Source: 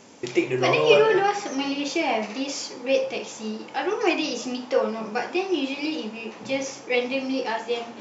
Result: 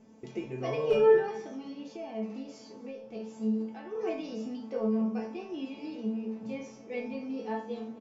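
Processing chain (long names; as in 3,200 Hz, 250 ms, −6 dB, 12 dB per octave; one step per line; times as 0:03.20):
0:01.46–0:03.95: downward compressor 6 to 1, threshold −27 dBFS, peak gain reduction 10.5 dB
parametric band 360 Hz −5.5 dB 0.24 octaves
gain into a clipping stage and back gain 10.5 dB
tilt shelving filter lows +10 dB, about 780 Hz
tuned comb filter 220 Hz, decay 0.34 s, harmonics all, mix 90%
single-tap delay 250 ms −21.5 dB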